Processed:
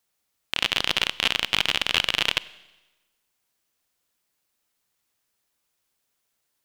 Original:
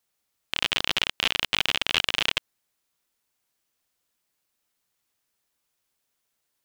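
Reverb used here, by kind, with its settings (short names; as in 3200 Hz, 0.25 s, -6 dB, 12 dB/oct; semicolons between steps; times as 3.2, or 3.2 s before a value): Schroeder reverb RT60 1.1 s, combs from 31 ms, DRR 18.5 dB; gain +1.5 dB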